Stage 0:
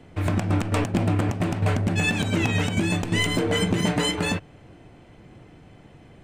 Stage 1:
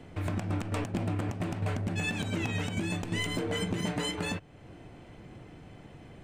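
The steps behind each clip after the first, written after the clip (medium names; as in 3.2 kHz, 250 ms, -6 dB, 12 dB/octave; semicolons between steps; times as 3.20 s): compression 1.5:1, threshold -45 dBFS, peak gain reduction 10 dB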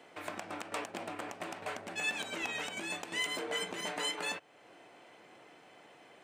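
high-pass 560 Hz 12 dB/octave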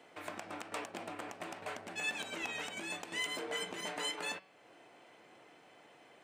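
de-hum 189.2 Hz, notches 29; trim -2.5 dB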